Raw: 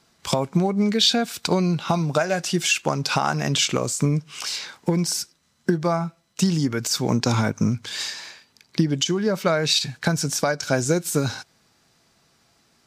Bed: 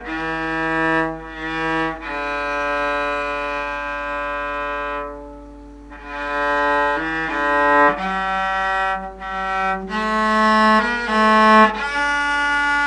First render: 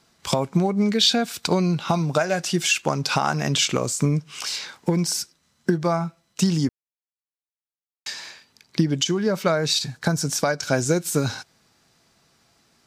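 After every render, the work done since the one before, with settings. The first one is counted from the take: 6.69–8.06 mute; 9.52–10.26 bell 2600 Hz -6.5 dB 0.97 oct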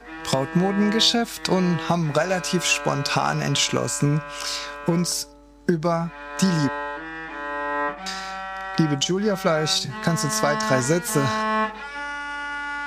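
add bed -11.5 dB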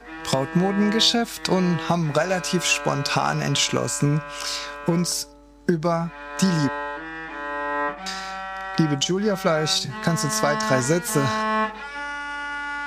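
nothing audible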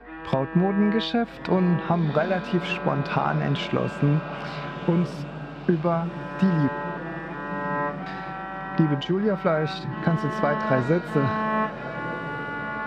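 air absorption 470 m; diffused feedback echo 1.233 s, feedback 58%, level -12 dB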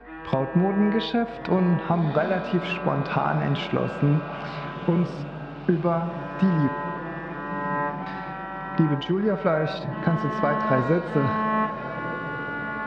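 air absorption 79 m; narrowing echo 70 ms, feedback 80%, band-pass 700 Hz, level -11 dB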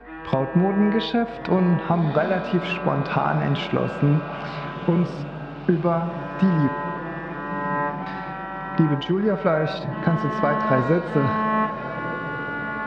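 gain +2 dB

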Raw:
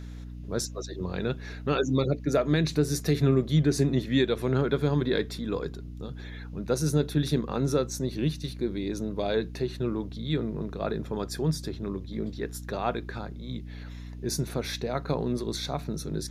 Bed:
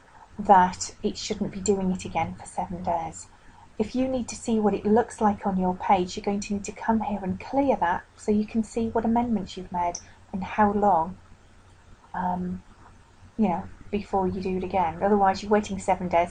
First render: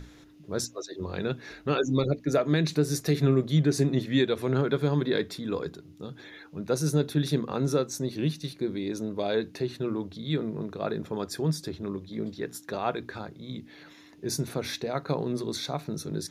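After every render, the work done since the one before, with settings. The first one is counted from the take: notches 60/120/180/240 Hz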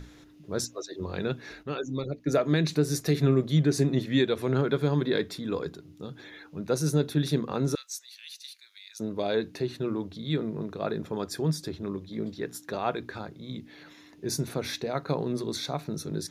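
1.63–2.26 gain -7 dB; 7.75–9 Bessel high-pass 2800 Hz, order 4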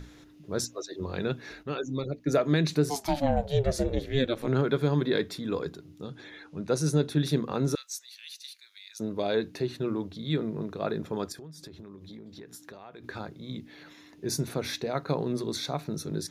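2.89–4.46 ring modulator 610 Hz -> 100 Hz; 6.04–7.24 LPF 11000 Hz 24 dB/oct; 11.32–13.04 compressor 16:1, threshold -41 dBFS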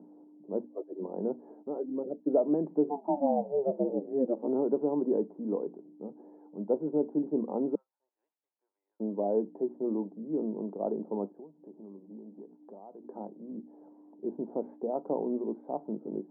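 Chebyshev band-pass 200–900 Hz, order 4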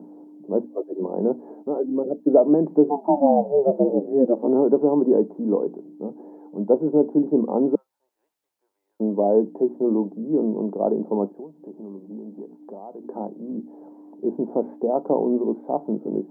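gain +10.5 dB

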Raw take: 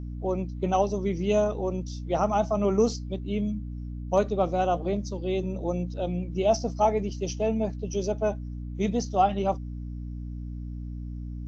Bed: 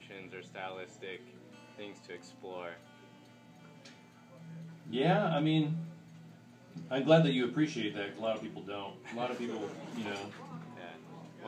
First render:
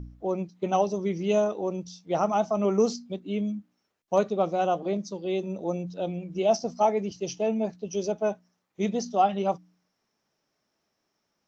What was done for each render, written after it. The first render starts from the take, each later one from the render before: de-hum 60 Hz, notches 5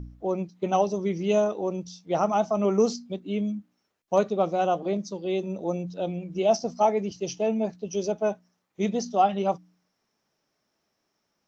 gain +1 dB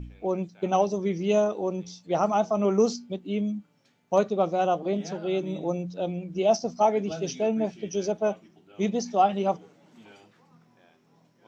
add bed -12.5 dB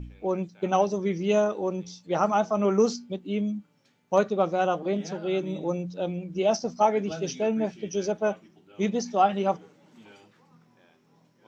notch 690 Hz, Q 12; dynamic EQ 1600 Hz, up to +6 dB, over -45 dBFS, Q 1.7

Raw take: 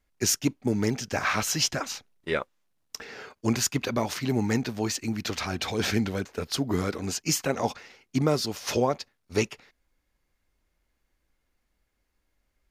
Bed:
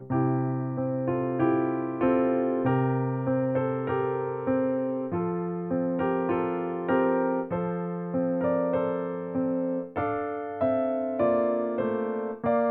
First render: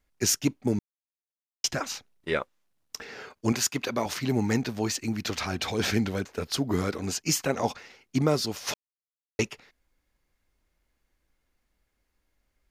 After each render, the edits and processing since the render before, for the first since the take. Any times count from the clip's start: 0.79–1.64 mute; 3.52–4.06 HPF 250 Hz 6 dB/oct; 8.74–9.39 mute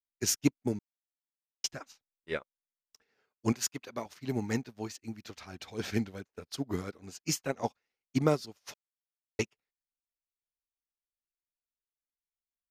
upward expander 2.5:1, over -44 dBFS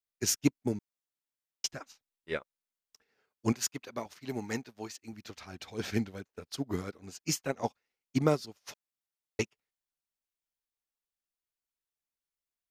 4.19–5.13 low shelf 240 Hz -9 dB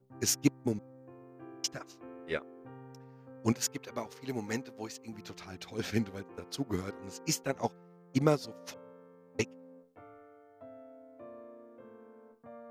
add bed -25.5 dB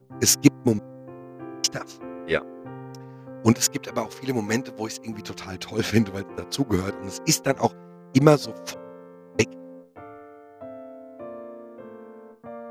gain +11 dB

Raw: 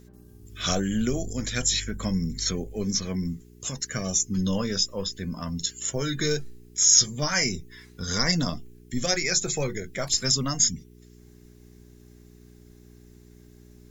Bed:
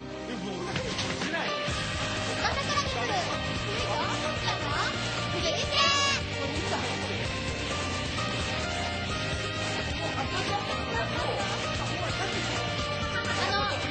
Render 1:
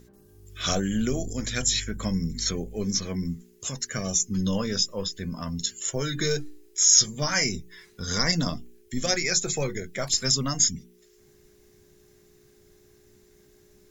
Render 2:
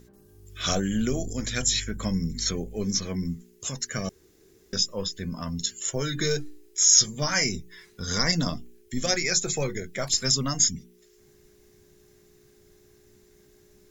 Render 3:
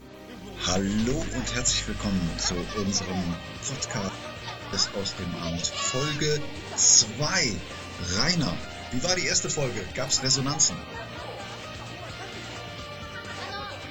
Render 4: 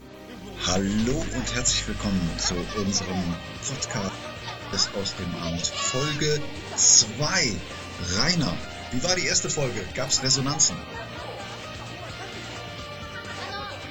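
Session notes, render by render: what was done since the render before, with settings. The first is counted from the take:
de-hum 60 Hz, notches 5
4.09–4.73 room tone
add bed -7.5 dB
gain +1.5 dB

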